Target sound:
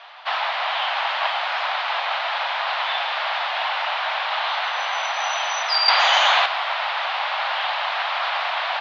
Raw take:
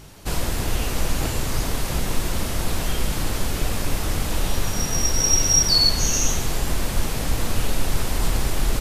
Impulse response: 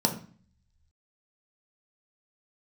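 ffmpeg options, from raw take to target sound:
-filter_complex "[0:a]highpass=f=390:t=q:w=0.5412,highpass=f=390:t=q:w=1.307,lowpass=f=3.5k:t=q:w=0.5176,lowpass=f=3.5k:t=q:w=0.7071,lowpass=f=3.5k:t=q:w=1.932,afreqshift=320,asettb=1/sr,asplit=3[a][b][c];[a]atrim=end=5.884[d];[b]atrim=start=5.88:end=6.46,asetpts=PTS-STARTPTS,afade=t=in:d=0.004:c=qsin,afade=t=out:st=0.576:d=0.004:c=qsin,acontrast=87[e];[c]atrim=start=6.456[f];[d][e]acrossfade=d=0.004:c1=hsin:c2=qsin[g];[g][f]acrossfade=d=0.004:c1=qsin:c2=hsin,volume=9dB"

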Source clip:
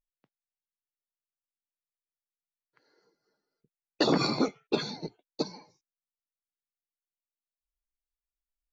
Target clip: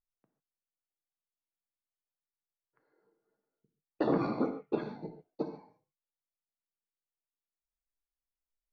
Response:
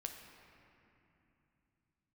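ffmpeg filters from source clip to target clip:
-filter_complex "[0:a]lowpass=1.3k[a];[1:a]atrim=start_sample=2205,afade=t=out:st=0.2:d=0.01,atrim=end_sample=9261[b];[a][b]afir=irnorm=-1:irlink=0"

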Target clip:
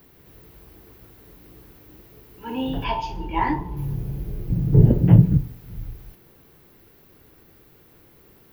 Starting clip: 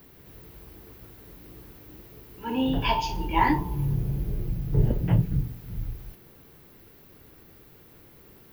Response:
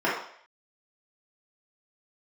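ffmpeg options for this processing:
-filter_complex "[0:a]asettb=1/sr,asplit=3[a][b][c];[a]atrim=end=2.844[d];[b]atrim=start=2.84:end=3.77,asetpts=PTS-STARTPTS,afade=t=in:d=0.004:c=qsin,afade=t=out:st=0.926:d=0.004:c=qsin,lowpass=f=2.8k:p=1[e];[c]atrim=start=3.766[f];[d][e]acrossfade=d=0.004:c1=hsin:c2=qsin[g];[g][f]acrossfade=d=0.004:c1=qsin:c2=hsin,asettb=1/sr,asplit=3[h][i][j];[h]atrim=end=4.504[k];[i]atrim=start=4.5:end=5.38,asetpts=PTS-STARTPTS,afade=t=in:d=0.004:c=qsin,afade=t=out:st=0.876:d=0.004:c=qsin,equalizer=f=190:w=0.37:g=12.5[l];[j]atrim=start=5.376[m];[k][l]acrossfade=d=0.004:c1=hsin:c2=qsin[n];[n][m]acrossfade=d=0.004:c1=qsin:c2=hsin,asplit=2[o][p];[1:a]atrim=start_sample=2205[q];[p][q]afir=irnorm=-1:irlink=0,volume=-30dB[r];[o][r]amix=inputs=2:normalize=0,volume=-1dB"

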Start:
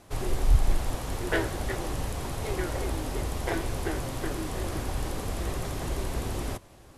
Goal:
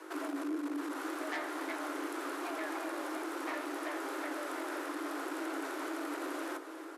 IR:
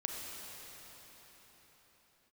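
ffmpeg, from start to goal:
-filter_complex "[0:a]equalizer=f=1.2k:t=o:w=1.3:g=11.5,acompressor=threshold=-37dB:ratio=2,asoftclip=type=tanh:threshold=-31dB,aecho=1:1:278:0.2,aeval=exprs='val(0)+0.00398*(sin(2*PI*50*n/s)+sin(2*PI*2*50*n/s)/2+sin(2*PI*3*50*n/s)/3+sin(2*PI*4*50*n/s)/4+sin(2*PI*5*50*n/s)/5)':c=same,asplit=2[a][b];[1:a]atrim=start_sample=2205,asetrate=27783,aresample=44100[c];[b][c]afir=irnorm=-1:irlink=0,volume=-14.5dB[d];[a][d]amix=inputs=2:normalize=0,afreqshift=270,volume=-3.5dB"

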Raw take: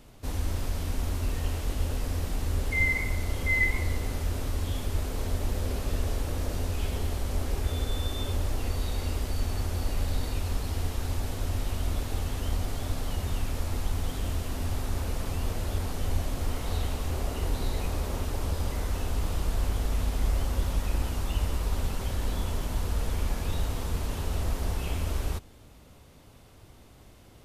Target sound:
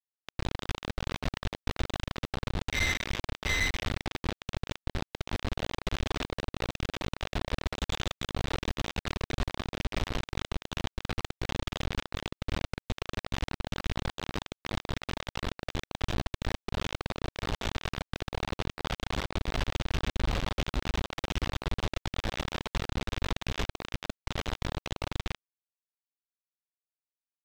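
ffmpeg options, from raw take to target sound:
-af "aresample=8000,acrusher=bits=3:mix=0:aa=0.000001,aresample=44100,asoftclip=type=hard:threshold=-23.5dB"

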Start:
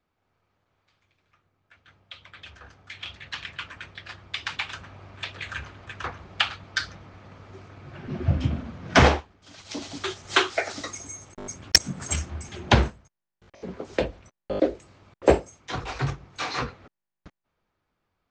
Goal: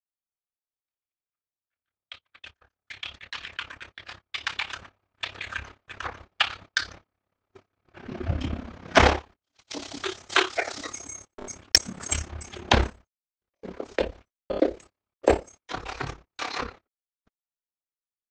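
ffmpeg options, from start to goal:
-filter_complex "[0:a]asettb=1/sr,asplit=3[a][b][c];[a]atrim=end=15.254[d];[b]atrim=start=15.25:end=16.66,asetpts=PTS-STARTPTS,afade=t=in:d=0.004:c=qsin,afade=t=out:st=1.406:d=0.004:c=qsin,aeval=exprs='0.631*(cos(1*acos(clip(val(0)/0.631,-1,1)))-cos(1*PI/2))+0.0398*(cos(3*acos(clip(val(0)/0.631,-1,1)))-cos(3*PI/2))':c=same[e];[c]atrim=start=16.656[f];[d][e]acrossfade=d=0.004:c1=hsin:c2=qsin[g];[g][f]acrossfade=d=0.004:c1=qsin:c2=hsin,equalizer=f=130:w=1.5:g=-11.5,agate=range=-33dB:threshold=-44dB:ratio=16:detection=peak,tremolo=f=34:d=0.75,volume=3.5dB"

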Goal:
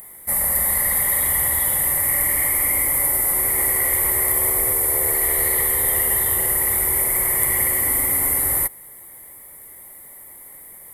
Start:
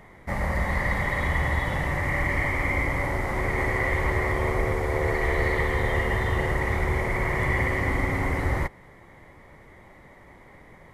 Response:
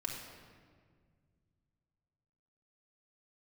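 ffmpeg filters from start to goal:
-af "aexciter=amount=16:drive=8.1:freq=9k,bass=f=250:g=-6,treble=f=4k:g=14,volume=-3dB"

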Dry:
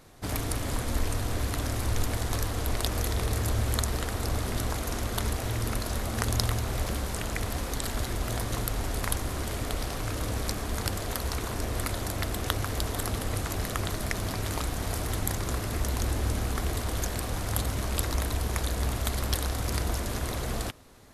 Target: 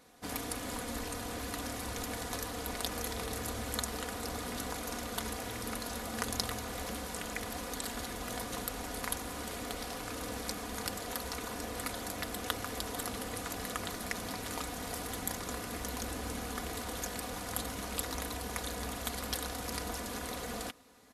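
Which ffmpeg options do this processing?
-af "highpass=f=200:p=1,aecho=1:1:4.1:0.54,volume=-5.5dB"

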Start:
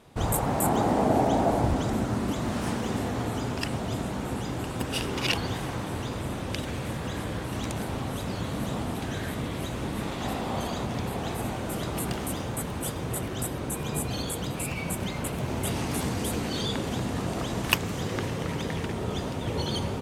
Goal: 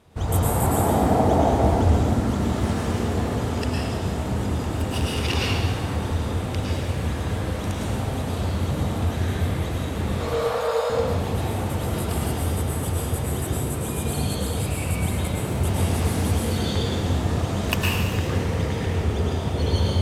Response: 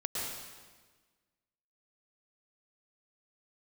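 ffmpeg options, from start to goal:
-filter_complex "[0:a]equalizer=f=74:t=o:w=0.68:g=13,asettb=1/sr,asplit=3[a][b][c];[a]atrim=end=10.204[d];[b]atrim=start=10.2:end=10.9,asetpts=PTS-STARTPTS,afade=t=in:d=0.004:c=qsin,afade=t=out:st=0.696:d=0.004:c=qsin,afreqshift=390[e];[c]atrim=start=10.896[f];[d][e]acrossfade=d=0.004:c1=hsin:c2=qsin[g];[g][f]acrossfade=d=0.004:c1=qsin:c2=hsin[h];[1:a]atrim=start_sample=2205[i];[h][i]afir=irnorm=-1:irlink=0,volume=-1.5dB"

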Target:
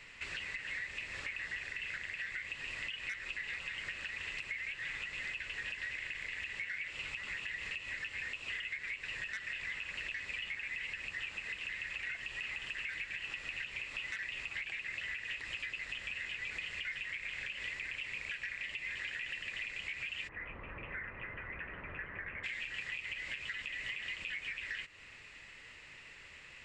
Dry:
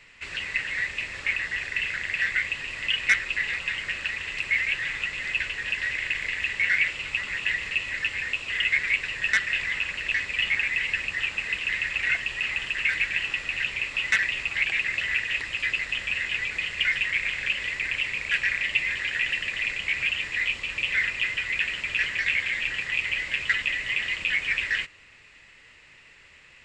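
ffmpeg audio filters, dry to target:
-filter_complex "[0:a]asplit=3[a][b][c];[a]afade=t=out:st=20.27:d=0.02[d];[b]lowpass=f=1.4k:w=0.5412,lowpass=f=1.4k:w=1.3066,afade=t=in:st=20.27:d=0.02,afade=t=out:st=22.43:d=0.02[e];[c]afade=t=in:st=22.43:d=0.02[f];[d][e][f]amix=inputs=3:normalize=0,alimiter=limit=-19.5dB:level=0:latency=1:release=197,acompressor=threshold=-40dB:ratio=3,volume=-1dB"

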